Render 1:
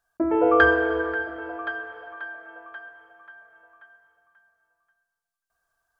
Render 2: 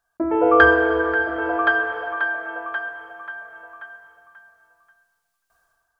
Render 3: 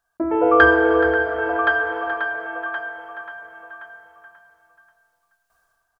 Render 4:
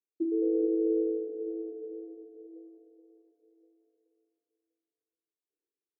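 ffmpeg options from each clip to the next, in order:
ffmpeg -i in.wav -af "equalizer=frequency=1000:width=1.5:gain=2.5,dynaudnorm=framelen=200:gausssize=5:maxgain=12dB" out.wav
ffmpeg -i in.wav -filter_complex "[0:a]asplit=2[link_01][link_02];[link_02]adelay=425.7,volume=-8dB,highshelf=frequency=4000:gain=-9.58[link_03];[link_01][link_03]amix=inputs=2:normalize=0" out.wav
ffmpeg -i in.wav -af "asuperpass=centerf=350:order=8:qfactor=2,volume=-6.5dB" out.wav

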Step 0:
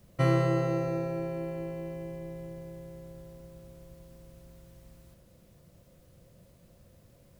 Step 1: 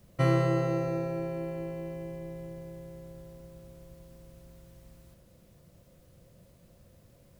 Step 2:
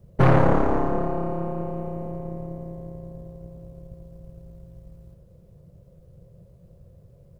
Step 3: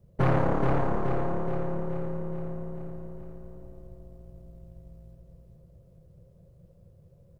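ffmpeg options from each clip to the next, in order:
ffmpeg -i in.wav -af anull out.wav
ffmpeg -i in.wav -af "firequalizer=gain_entry='entry(170,0);entry(250,-17);entry(420,-1);entry(750,-11);entry(1900,-19)':delay=0.05:min_phase=1,aeval=exprs='0.141*(cos(1*acos(clip(val(0)/0.141,-1,1)))-cos(1*PI/2))+0.0447*(cos(7*acos(clip(val(0)/0.141,-1,1)))-cos(7*PI/2))+0.0398*(cos(8*acos(clip(val(0)/0.141,-1,1)))-cos(8*PI/2))':channel_layout=same,volume=7.5dB" out.wav
ffmpeg -i in.wav -af "aecho=1:1:424|848|1272|1696|2120|2544|2968:0.596|0.328|0.18|0.0991|0.0545|0.03|0.0165,volume=-7dB" out.wav

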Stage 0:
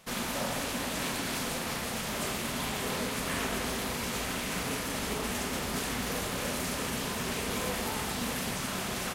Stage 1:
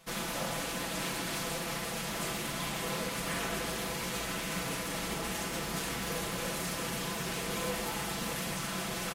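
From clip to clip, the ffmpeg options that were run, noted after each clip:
ffmpeg -i in.wav -af "aecho=1:1:6:0.65,volume=-3.5dB" out.wav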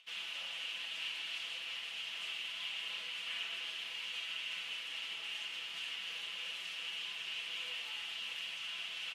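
ffmpeg -i in.wav -af "flanger=delay=10:depth=3.7:regen=-55:speed=0.3:shape=triangular,acompressor=mode=upward:threshold=-60dB:ratio=2.5,bandpass=frequency=2900:width_type=q:width=6.6:csg=0,volume=10.5dB" out.wav

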